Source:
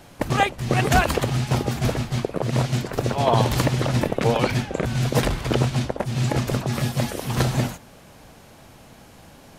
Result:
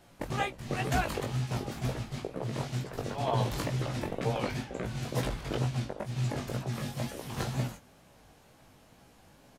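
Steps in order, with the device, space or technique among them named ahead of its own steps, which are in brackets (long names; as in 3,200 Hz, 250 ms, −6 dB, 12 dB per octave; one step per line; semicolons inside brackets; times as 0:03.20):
double-tracked vocal (double-tracking delay 23 ms −13 dB; chorus effect 2.1 Hz, delay 15.5 ms, depth 5.1 ms)
level −8.5 dB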